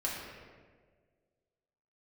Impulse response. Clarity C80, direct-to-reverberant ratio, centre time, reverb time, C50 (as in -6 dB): 2.5 dB, -4.5 dB, 87 ms, 1.6 s, 1.0 dB